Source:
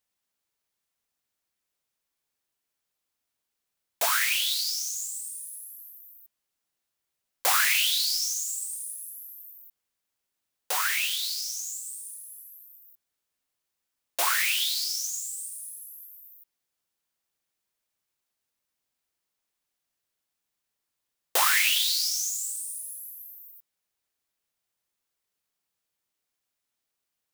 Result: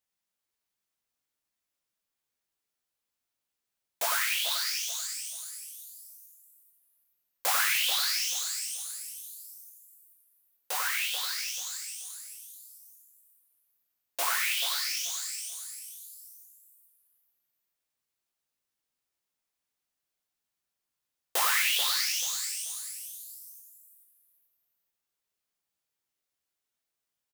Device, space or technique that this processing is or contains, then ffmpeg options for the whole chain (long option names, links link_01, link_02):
slapback doubling: -filter_complex "[0:a]asplit=3[link_01][link_02][link_03];[link_02]adelay=16,volume=-7dB[link_04];[link_03]adelay=94,volume=-7.5dB[link_05];[link_01][link_04][link_05]amix=inputs=3:normalize=0,aecho=1:1:435|870|1305:0.376|0.109|0.0316,volume=-5dB"